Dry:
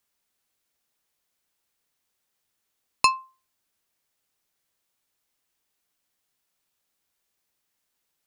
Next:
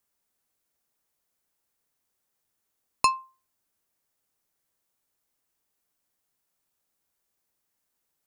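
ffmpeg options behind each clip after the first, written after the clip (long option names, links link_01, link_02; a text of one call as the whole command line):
ffmpeg -i in.wav -af "equalizer=frequency=3200:width_type=o:width=1.9:gain=-6" out.wav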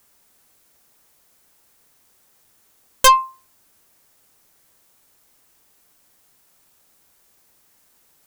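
ffmpeg -i in.wav -af "aeval=exprs='0.447*(cos(1*acos(clip(val(0)/0.447,-1,1)))-cos(1*PI/2))+0.0631*(cos(4*acos(clip(val(0)/0.447,-1,1)))-cos(4*PI/2))':channel_layout=same,aeval=exprs='0.501*sin(PI/2*6.31*val(0)/0.501)':channel_layout=same" out.wav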